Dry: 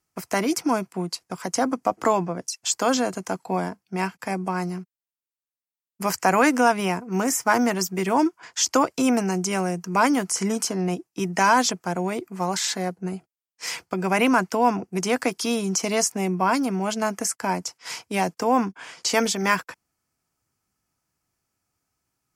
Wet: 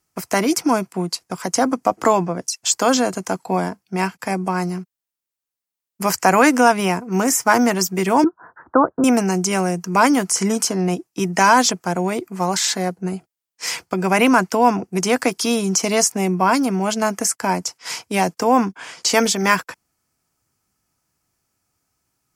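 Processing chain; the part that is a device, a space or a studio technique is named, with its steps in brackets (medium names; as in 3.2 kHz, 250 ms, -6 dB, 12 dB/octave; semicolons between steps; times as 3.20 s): exciter from parts (in parallel at -12.5 dB: high-pass 3.4 kHz + saturation -23 dBFS, distortion -11 dB); 8.24–9.04 s: on the sum: steep low-pass 1.6 kHz 72 dB/octave; trim +5 dB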